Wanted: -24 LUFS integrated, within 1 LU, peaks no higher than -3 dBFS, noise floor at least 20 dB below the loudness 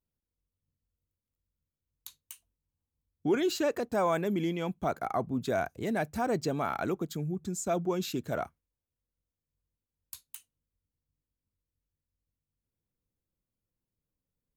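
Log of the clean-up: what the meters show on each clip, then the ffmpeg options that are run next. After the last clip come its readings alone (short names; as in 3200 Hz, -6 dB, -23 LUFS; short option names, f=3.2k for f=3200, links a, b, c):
loudness -31.5 LUFS; peak -18.0 dBFS; loudness target -24.0 LUFS
-> -af "volume=7.5dB"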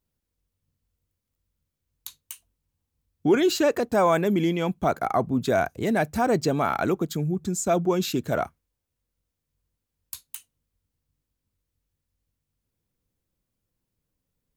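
loudness -24.0 LUFS; peak -10.5 dBFS; noise floor -83 dBFS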